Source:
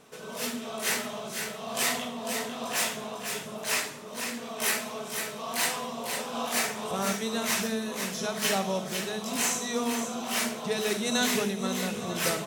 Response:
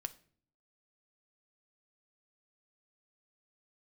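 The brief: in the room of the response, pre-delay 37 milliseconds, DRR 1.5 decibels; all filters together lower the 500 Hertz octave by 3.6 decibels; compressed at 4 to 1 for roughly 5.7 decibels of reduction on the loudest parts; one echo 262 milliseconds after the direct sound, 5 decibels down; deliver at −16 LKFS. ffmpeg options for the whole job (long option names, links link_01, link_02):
-filter_complex "[0:a]equalizer=frequency=500:width_type=o:gain=-4.5,acompressor=threshold=-30dB:ratio=4,aecho=1:1:262:0.562,asplit=2[link_01][link_02];[1:a]atrim=start_sample=2205,adelay=37[link_03];[link_02][link_03]afir=irnorm=-1:irlink=0,volume=0.5dB[link_04];[link_01][link_04]amix=inputs=2:normalize=0,volume=14dB"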